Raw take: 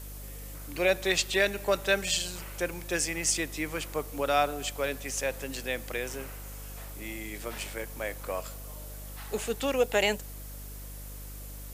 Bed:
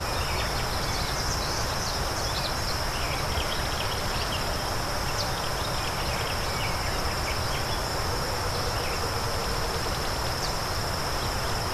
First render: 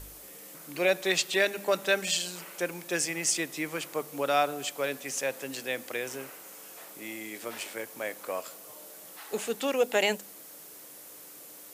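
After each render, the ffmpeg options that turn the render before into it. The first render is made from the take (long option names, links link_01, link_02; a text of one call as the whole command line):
ffmpeg -i in.wav -af "bandreject=frequency=50:width_type=h:width=4,bandreject=frequency=100:width_type=h:width=4,bandreject=frequency=150:width_type=h:width=4,bandreject=frequency=200:width_type=h:width=4,bandreject=frequency=250:width_type=h:width=4" out.wav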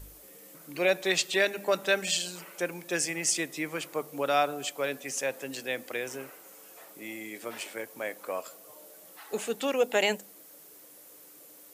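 ffmpeg -i in.wav -af "afftdn=noise_reduction=6:noise_floor=-48" out.wav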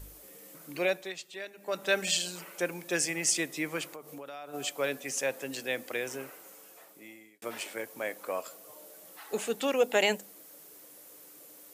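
ffmpeg -i in.wav -filter_complex "[0:a]asplit=3[link_01][link_02][link_03];[link_01]afade=type=out:start_time=3.89:duration=0.02[link_04];[link_02]acompressor=threshold=-41dB:ratio=6:attack=3.2:release=140:knee=1:detection=peak,afade=type=in:start_time=3.89:duration=0.02,afade=type=out:start_time=4.53:duration=0.02[link_05];[link_03]afade=type=in:start_time=4.53:duration=0.02[link_06];[link_04][link_05][link_06]amix=inputs=3:normalize=0,asplit=4[link_07][link_08][link_09][link_10];[link_07]atrim=end=1.14,asetpts=PTS-STARTPTS,afade=type=out:start_time=0.71:duration=0.43:silence=0.158489[link_11];[link_08]atrim=start=1.14:end=1.57,asetpts=PTS-STARTPTS,volume=-16dB[link_12];[link_09]atrim=start=1.57:end=7.42,asetpts=PTS-STARTPTS,afade=type=in:duration=0.43:silence=0.158489,afade=type=out:start_time=4.88:duration=0.97[link_13];[link_10]atrim=start=7.42,asetpts=PTS-STARTPTS,afade=type=in:duration=0.004:curve=hsin[link_14];[link_11][link_12][link_13][link_14]concat=n=4:v=0:a=1" out.wav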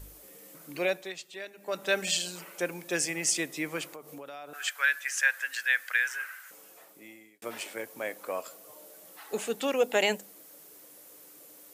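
ffmpeg -i in.wav -filter_complex "[0:a]asettb=1/sr,asplit=3[link_01][link_02][link_03];[link_01]atrim=end=4.534[link_04];[link_02]atrim=start=4.53:end=6.51,asetpts=PTS-STARTPTS,afade=type=in:duration=0.004:curve=qsin,afade=type=out:start_time=1.976:duration=0.004:curve=qsin,highpass=frequency=1600:width_type=q:width=7.1[link_05];[link_03]atrim=start=6.506[link_06];[link_04][link_05]acrossfade=duration=0.004:curve1=hsin:curve2=qsin[link_07];[link_07][link_06]acrossfade=duration=0.004:curve1=qsin:curve2=hsin" out.wav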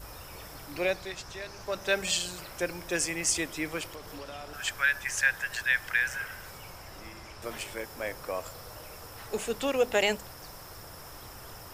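ffmpeg -i in.wav -i bed.wav -filter_complex "[1:a]volume=-18.5dB[link_01];[0:a][link_01]amix=inputs=2:normalize=0" out.wav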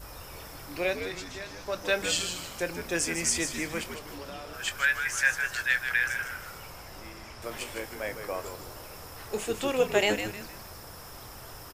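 ffmpeg -i in.wav -filter_complex "[0:a]asplit=2[link_01][link_02];[link_02]adelay=24,volume=-12dB[link_03];[link_01][link_03]amix=inputs=2:normalize=0,asplit=5[link_04][link_05][link_06][link_07][link_08];[link_05]adelay=155,afreqshift=-98,volume=-8dB[link_09];[link_06]adelay=310,afreqshift=-196,volume=-16.6dB[link_10];[link_07]adelay=465,afreqshift=-294,volume=-25.3dB[link_11];[link_08]adelay=620,afreqshift=-392,volume=-33.9dB[link_12];[link_04][link_09][link_10][link_11][link_12]amix=inputs=5:normalize=0" out.wav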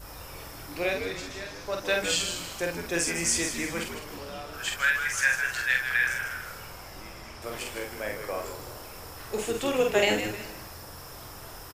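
ffmpeg -i in.wav -filter_complex "[0:a]asplit=2[link_01][link_02];[link_02]adelay=47,volume=-4dB[link_03];[link_01][link_03]amix=inputs=2:normalize=0,aecho=1:1:370:0.0841" out.wav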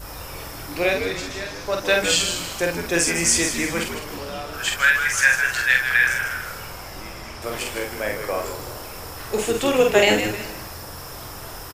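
ffmpeg -i in.wav -af "volume=7.5dB,alimiter=limit=-3dB:level=0:latency=1" out.wav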